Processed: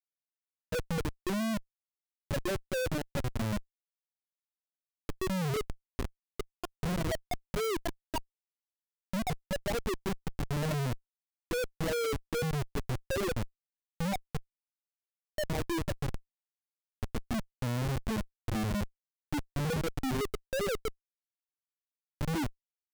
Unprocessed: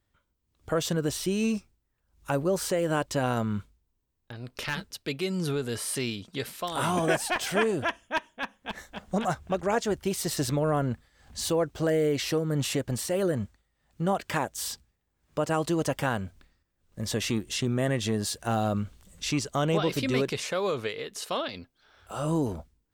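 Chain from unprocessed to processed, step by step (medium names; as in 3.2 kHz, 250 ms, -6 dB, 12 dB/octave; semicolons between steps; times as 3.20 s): reverse echo 270 ms -24 dB; loudest bins only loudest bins 2; Schmitt trigger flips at -31 dBFS; trim +4 dB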